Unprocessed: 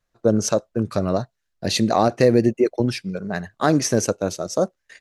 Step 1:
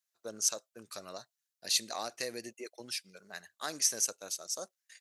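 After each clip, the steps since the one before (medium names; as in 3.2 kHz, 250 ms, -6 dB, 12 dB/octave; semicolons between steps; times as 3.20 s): differentiator; trim -1.5 dB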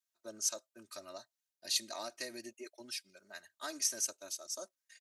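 comb 3.2 ms, depth 99%; trim -7 dB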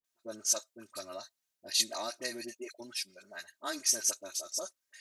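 phase dispersion highs, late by 43 ms, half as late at 1.1 kHz; trim +5 dB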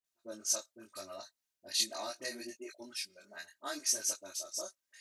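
chorus 0.76 Hz, delay 19.5 ms, depth 4.6 ms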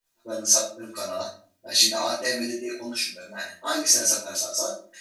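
simulated room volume 320 m³, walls furnished, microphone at 4.8 m; trim +6 dB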